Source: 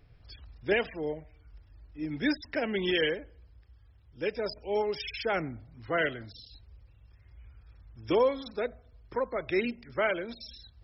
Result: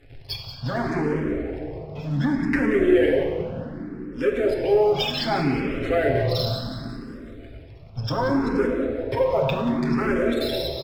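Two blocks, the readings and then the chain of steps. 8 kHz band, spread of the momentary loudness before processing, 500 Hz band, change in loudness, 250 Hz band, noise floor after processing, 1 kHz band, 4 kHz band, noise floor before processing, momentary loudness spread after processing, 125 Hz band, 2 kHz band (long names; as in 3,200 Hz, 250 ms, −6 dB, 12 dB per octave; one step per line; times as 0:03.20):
can't be measured, 17 LU, +9.0 dB, +8.0 dB, +12.0 dB, −42 dBFS, +8.0 dB, +7.5 dB, −59 dBFS, 15 LU, +17.0 dB, +3.5 dB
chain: treble cut that deepens with the level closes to 1,000 Hz, closed at −26.5 dBFS
comb filter 7.5 ms, depth 90%
hum removal 52.85 Hz, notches 3
leveller curve on the samples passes 2
in parallel at +1 dB: compressor whose output falls as the input rises −33 dBFS, ratio −1
on the sum: echo with shifted repeats 181 ms, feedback 53%, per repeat −85 Hz, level −11.5 dB
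rectangular room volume 130 cubic metres, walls hard, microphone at 0.34 metres
frequency shifter mixed with the dry sound +0.67 Hz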